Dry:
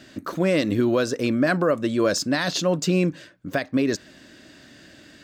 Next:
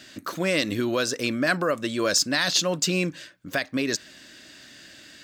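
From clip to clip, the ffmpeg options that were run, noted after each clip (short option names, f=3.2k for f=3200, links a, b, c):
-af "tiltshelf=f=1.3k:g=-6"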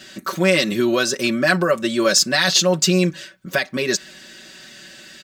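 -af "aecho=1:1:5.3:0.92,volume=3.5dB"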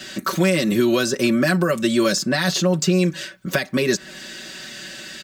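-filter_complex "[0:a]acrossover=split=320|1900|7300[a][b][c][d];[a]acompressor=threshold=-24dB:ratio=4[e];[b]acompressor=threshold=-29dB:ratio=4[f];[c]acompressor=threshold=-35dB:ratio=4[g];[d]acompressor=threshold=-39dB:ratio=4[h];[e][f][g][h]amix=inputs=4:normalize=0,volume=6dB"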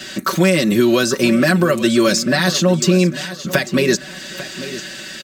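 -af "aecho=1:1:846|1692|2538:0.2|0.0599|0.018,volume=4dB"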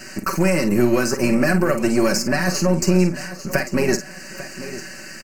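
-filter_complex "[0:a]aeval=exprs='if(lt(val(0),0),0.447*val(0),val(0))':c=same,asuperstop=centerf=3500:order=4:qfactor=1.8,asplit=2[a][b];[b]adelay=49,volume=-9.5dB[c];[a][c]amix=inputs=2:normalize=0,volume=-1.5dB"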